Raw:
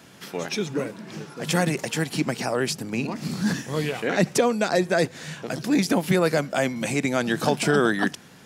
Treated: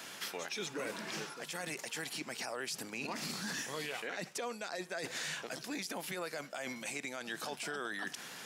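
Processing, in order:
high-pass filter 1,100 Hz 6 dB per octave
reversed playback
downward compressor 12 to 1, threshold −39 dBFS, peak gain reduction 18 dB
reversed playback
brickwall limiter −35.5 dBFS, peak gain reduction 9 dB
level +6 dB

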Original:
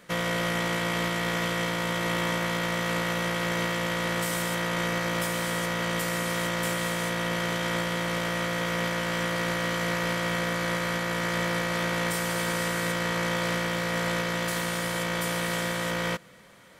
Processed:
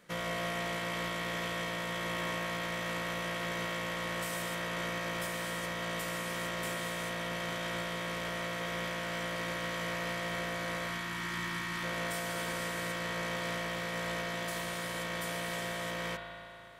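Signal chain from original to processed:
gain on a spectral selection 0:10.88–0:11.84, 400–840 Hz −15 dB
spring reverb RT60 2.8 s, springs 36 ms, chirp 30 ms, DRR 1.5 dB
level −8.5 dB

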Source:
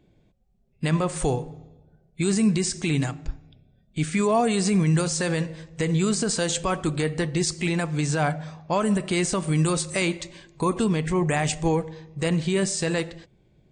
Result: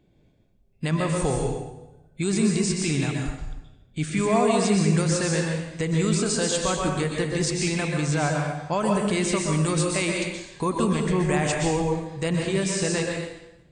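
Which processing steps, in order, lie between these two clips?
dense smooth reverb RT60 0.88 s, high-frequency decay 0.9×, pre-delay 110 ms, DRR 0 dB
level −2 dB

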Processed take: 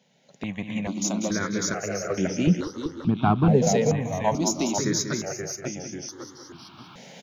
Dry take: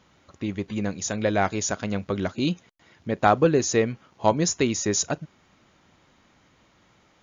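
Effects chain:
one-sided soft clipper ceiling −10 dBFS
camcorder AGC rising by 9.8 dB per second
high-pass filter 130 Hz 24 dB per octave
0:02.47–0:03.67: spectral tilt −3.5 dB per octave
in parallel at −10.5 dB: dead-zone distortion −37.5 dBFS
on the sum: delay with pitch and tempo change per echo 237 ms, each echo −1 semitone, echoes 3, each echo −6 dB
on a send: repeating echo 192 ms, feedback 43%, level −9 dB
on the sum: step-sequenced phaser 2.3 Hz 320–4,000 Hz
level −2 dB

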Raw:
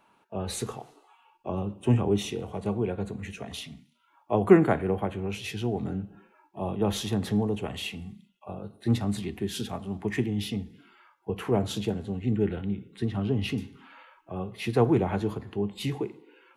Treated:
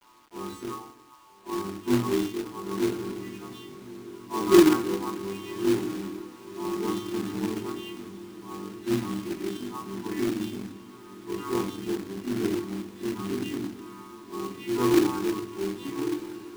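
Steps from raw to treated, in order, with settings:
every partial snapped to a pitch grid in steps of 2 semitones
in parallel at −2.5 dB: downward compressor 6 to 1, threshold −39 dBFS, peak gain reduction 25 dB
on the sum: pair of resonant band-passes 600 Hz, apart 1.8 octaves
rectangular room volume 340 cubic metres, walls furnished, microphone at 7.3 metres
log-companded quantiser 4 bits
on a send: feedback delay with all-pass diffusion 1,160 ms, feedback 57%, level −15 dB
on the sum: level −4.5 dB

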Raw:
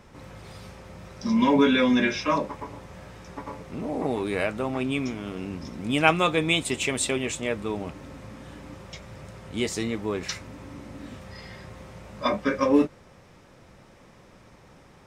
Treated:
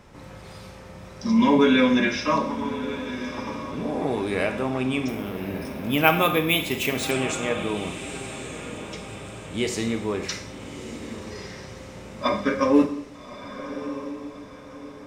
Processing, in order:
feedback delay with all-pass diffusion 1,208 ms, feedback 42%, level −11.5 dB
four-comb reverb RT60 0.71 s, combs from 31 ms, DRR 7.5 dB
0:05.08–0:07.11: bad sample-rate conversion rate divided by 3×, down filtered, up hold
level +1 dB

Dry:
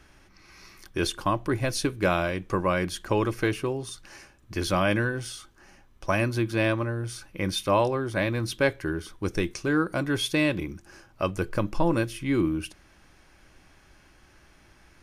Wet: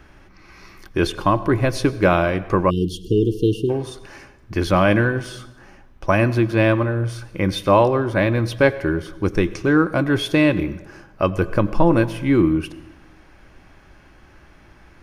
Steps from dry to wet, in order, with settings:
parametric band 9,100 Hz −11.5 dB 2.4 octaves
dense smooth reverb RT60 1.1 s, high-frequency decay 0.75×, pre-delay 75 ms, DRR 16.5 dB
time-frequency box erased 0:02.70–0:03.70, 480–2,700 Hz
level +8.5 dB

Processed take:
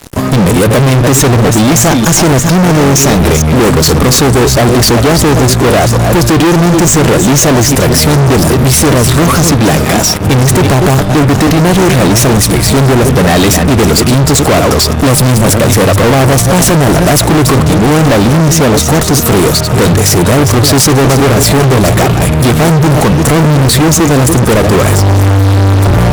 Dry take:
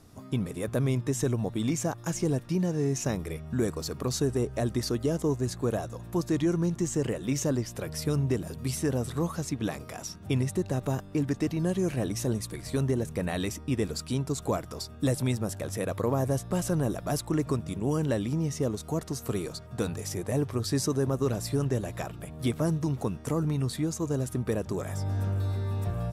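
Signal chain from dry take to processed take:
delay that plays each chunk backwards 228 ms, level −11 dB
fuzz pedal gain 43 dB, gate −50 dBFS
level +8 dB

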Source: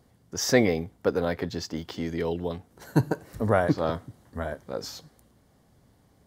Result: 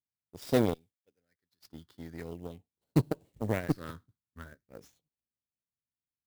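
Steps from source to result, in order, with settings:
0:00.74–0:01.65: first-order pre-emphasis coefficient 0.9
all-pass phaser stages 6, 0.42 Hz, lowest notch 620–1,800 Hz
high-shelf EQ 9,100 Hz +10 dB
in parallel at −3 dB: downward compressor, threshold −39 dBFS, peak gain reduction 22 dB
on the sum: harmonic generator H 3 −32 dB, 5 −27 dB, 7 −18 dB, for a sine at −7 dBFS
downward expander −39 dBFS
converter with an unsteady clock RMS 0.023 ms
level −4.5 dB

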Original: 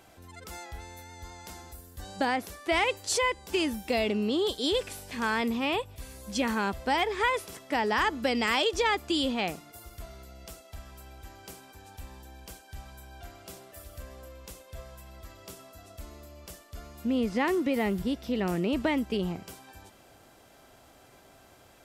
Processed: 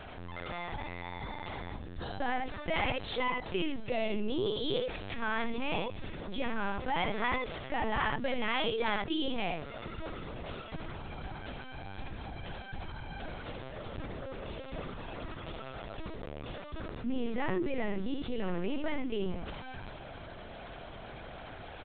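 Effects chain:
on a send: single-tap delay 72 ms −5 dB
on the sum: linear-prediction vocoder at 8 kHz pitch kept
envelope flattener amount 50%
level −6.5 dB

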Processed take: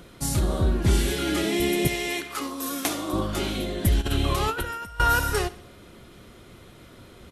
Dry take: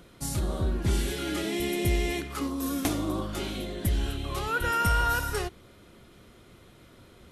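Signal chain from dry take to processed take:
0:01.87–0:03.13: high-pass filter 660 Hz 6 dB per octave
0:04.01–0:05.00: compressor whose output falls as the input rises −32 dBFS, ratio −0.5
repeating echo 69 ms, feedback 49%, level −19.5 dB
level +5.5 dB

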